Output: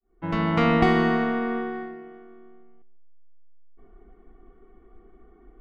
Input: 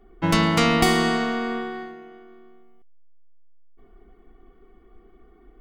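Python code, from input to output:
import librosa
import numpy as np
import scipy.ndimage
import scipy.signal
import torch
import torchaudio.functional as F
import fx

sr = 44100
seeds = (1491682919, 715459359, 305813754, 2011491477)

p1 = fx.fade_in_head(x, sr, length_s=0.69)
p2 = scipy.signal.sosfilt(scipy.signal.butter(2, 2000.0, 'lowpass', fs=sr, output='sos'), p1)
y = p2 + fx.echo_feedback(p2, sr, ms=146, feedback_pct=28, wet_db=-18.5, dry=0)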